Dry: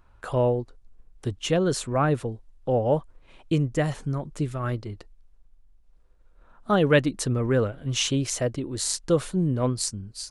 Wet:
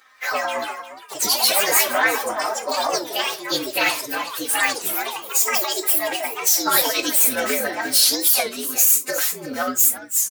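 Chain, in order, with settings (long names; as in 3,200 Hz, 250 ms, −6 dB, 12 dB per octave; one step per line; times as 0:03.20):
partials spread apart or drawn together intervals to 116%
high-pass filter 400 Hz 12 dB per octave
comb filter 3.9 ms, depth 76%
compressor whose output falls as the input rises −28 dBFS, ratio −1
tilt shelving filter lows −9 dB, about 810 Hz
delay with pitch and tempo change per echo 170 ms, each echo +4 semitones, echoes 3
on a send: single-tap delay 354 ms −13.5 dB
on the sum: reverb whose tail is shaped and stops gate 90 ms falling, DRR 8 dB
boost into a limiter +11 dB
wow of a warped record 33 1/3 rpm, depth 250 cents
level −3.5 dB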